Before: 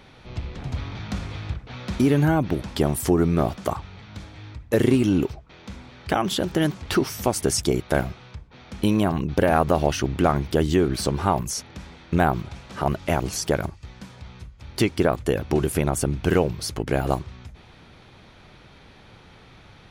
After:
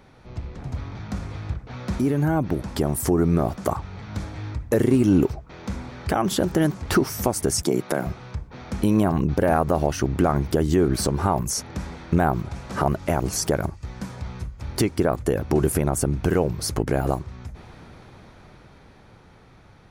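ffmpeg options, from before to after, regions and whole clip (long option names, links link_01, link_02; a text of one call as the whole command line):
ffmpeg -i in.wav -filter_complex "[0:a]asettb=1/sr,asplit=3[link_01][link_02][link_03];[link_01]atrim=end=7.624[link_04];[link_02]atrim=start=7.62:end=8.07,asetpts=PTS-STARTPTS,afade=type=in:duration=0.004:curve=qsin,afade=type=out:start_time=0.446:duration=0.004:curve=qsin,highpass=frequency=150:width=0.5412,highpass=frequency=150:width=1.3066,acompressor=threshold=-23dB:ratio=2:attack=3.2:release=140:knee=1:detection=peak[link_05];[link_03]atrim=start=8.066[link_06];[link_04][link_05]acrossfade=duration=0.004:curve1=hsin:curve2=qsin[link_07];[link_07][link_06]acrossfade=duration=0.004:curve1=qsin:curve2=hsin,alimiter=limit=-16dB:level=0:latency=1:release=488,dynaudnorm=framelen=270:gausssize=17:maxgain=10dB,equalizer=frequency=3200:width_type=o:width=1.2:gain=-9,volume=-1.5dB" out.wav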